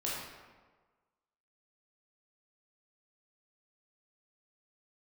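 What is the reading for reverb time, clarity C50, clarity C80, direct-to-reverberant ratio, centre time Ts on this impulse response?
1.4 s, −1.0 dB, 1.5 dB, −6.5 dB, 87 ms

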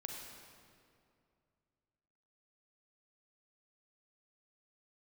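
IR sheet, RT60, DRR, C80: 2.4 s, 0.5 dB, 2.5 dB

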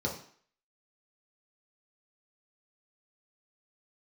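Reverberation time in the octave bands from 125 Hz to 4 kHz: 0.40, 0.50, 0.50, 0.55, 0.55, 0.50 seconds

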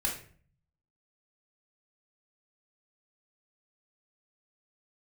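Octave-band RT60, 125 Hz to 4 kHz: 0.95, 0.70, 0.50, 0.45, 0.45, 0.35 seconds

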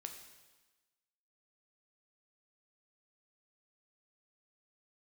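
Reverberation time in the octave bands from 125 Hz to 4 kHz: 1.1, 1.2, 1.2, 1.2, 1.2, 1.2 seconds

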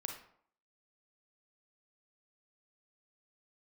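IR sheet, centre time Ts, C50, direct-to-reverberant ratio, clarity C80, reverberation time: 25 ms, 5.0 dB, 2.5 dB, 10.0 dB, 0.60 s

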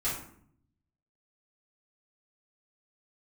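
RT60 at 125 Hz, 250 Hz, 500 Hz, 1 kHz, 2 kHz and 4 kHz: 1.2, 0.95, 0.65, 0.60, 0.50, 0.35 seconds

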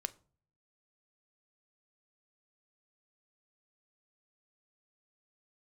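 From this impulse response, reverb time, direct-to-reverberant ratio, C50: 0.45 s, 12.5 dB, 21.5 dB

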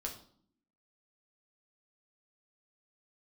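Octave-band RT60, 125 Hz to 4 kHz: 0.80, 1.0, 0.60, 0.55, 0.40, 0.45 seconds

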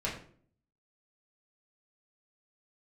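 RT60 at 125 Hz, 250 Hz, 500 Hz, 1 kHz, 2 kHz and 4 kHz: 0.75, 0.70, 0.60, 0.45, 0.40, 0.35 seconds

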